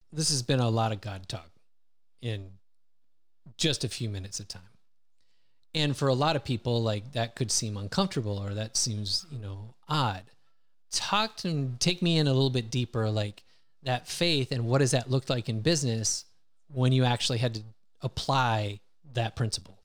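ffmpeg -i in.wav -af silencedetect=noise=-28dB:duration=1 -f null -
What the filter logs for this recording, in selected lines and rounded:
silence_start: 2.36
silence_end: 3.59 | silence_duration: 1.23
silence_start: 4.52
silence_end: 5.75 | silence_duration: 1.23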